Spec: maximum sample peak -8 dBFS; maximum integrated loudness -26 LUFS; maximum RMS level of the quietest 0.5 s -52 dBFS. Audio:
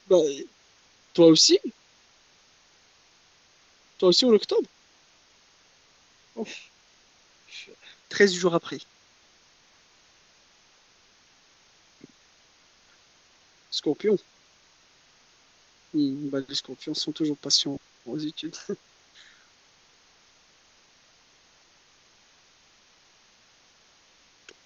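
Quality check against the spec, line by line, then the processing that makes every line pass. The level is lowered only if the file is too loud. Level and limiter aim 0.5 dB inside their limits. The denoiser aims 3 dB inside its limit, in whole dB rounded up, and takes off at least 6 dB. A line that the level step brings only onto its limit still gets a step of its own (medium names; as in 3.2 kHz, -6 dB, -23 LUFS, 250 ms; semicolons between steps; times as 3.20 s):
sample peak -5.0 dBFS: fail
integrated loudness -24.0 LUFS: fail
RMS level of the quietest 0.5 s -60 dBFS: pass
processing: trim -2.5 dB; peak limiter -8.5 dBFS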